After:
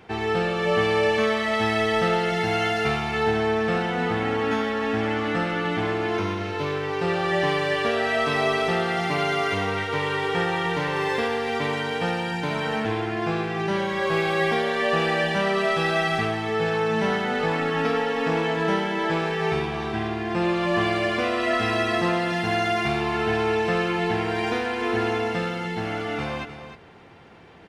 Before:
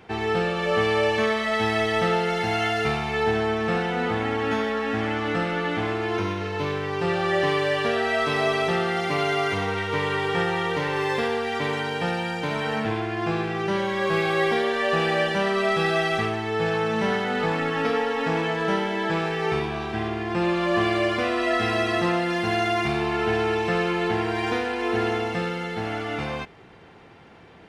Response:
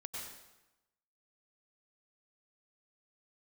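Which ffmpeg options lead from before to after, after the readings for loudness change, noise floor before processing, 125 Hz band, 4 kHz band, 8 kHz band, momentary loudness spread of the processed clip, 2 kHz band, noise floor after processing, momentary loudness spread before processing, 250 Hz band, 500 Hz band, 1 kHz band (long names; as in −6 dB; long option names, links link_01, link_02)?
+0.5 dB, −32 dBFS, +0.5 dB, +0.5 dB, +0.5 dB, 5 LU, +0.5 dB, −31 dBFS, 5 LU, 0.0 dB, 0.0 dB, +0.5 dB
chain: -af "aecho=1:1:305:0.299"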